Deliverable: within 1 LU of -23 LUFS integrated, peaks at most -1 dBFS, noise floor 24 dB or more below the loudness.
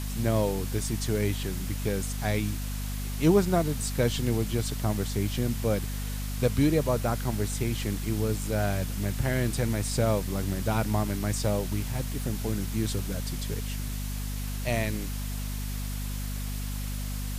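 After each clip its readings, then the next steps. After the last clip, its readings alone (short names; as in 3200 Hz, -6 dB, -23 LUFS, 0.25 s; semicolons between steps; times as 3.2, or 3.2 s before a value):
hum 50 Hz; harmonics up to 250 Hz; hum level -30 dBFS; noise floor -33 dBFS; noise floor target -53 dBFS; loudness -29.0 LUFS; peak -10.5 dBFS; loudness target -23.0 LUFS
-> notches 50/100/150/200/250 Hz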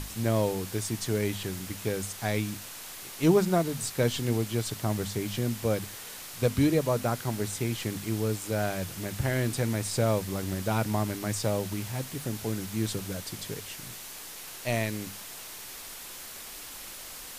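hum none; noise floor -43 dBFS; noise floor target -55 dBFS
-> denoiser 12 dB, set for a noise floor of -43 dBFS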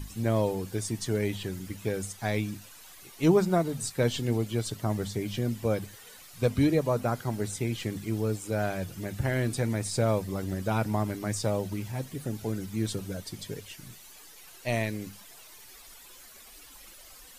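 noise floor -51 dBFS; noise floor target -54 dBFS
-> denoiser 6 dB, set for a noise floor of -51 dBFS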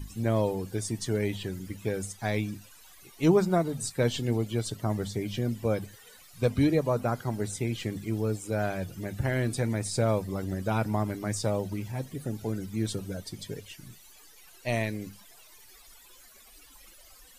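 noise floor -54 dBFS; loudness -30.0 LUFS; peak -11.5 dBFS; loudness target -23.0 LUFS
-> gain +7 dB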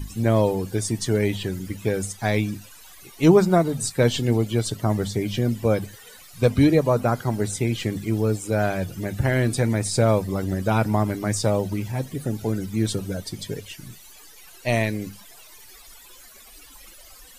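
loudness -23.0 LUFS; peak -4.5 dBFS; noise floor -47 dBFS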